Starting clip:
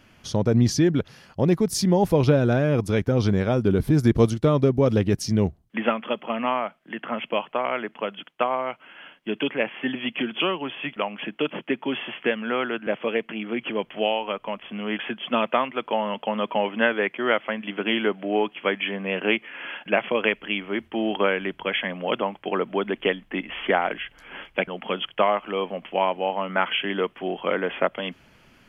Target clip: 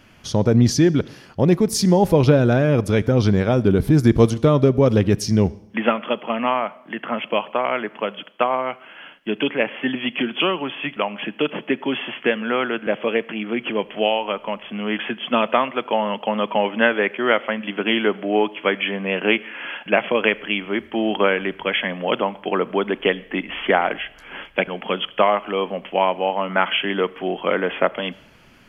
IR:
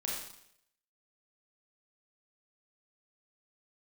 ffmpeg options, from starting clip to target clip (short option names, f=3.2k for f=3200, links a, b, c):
-filter_complex "[0:a]asplit=2[a][b];[1:a]atrim=start_sample=2205,lowpass=8.3k,adelay=38[c];[b][c]afir=irnorm=-1:irlink=0,volume=-23dB[d];[a][d]amix=inputs=2:normalize=0,volume=4dB"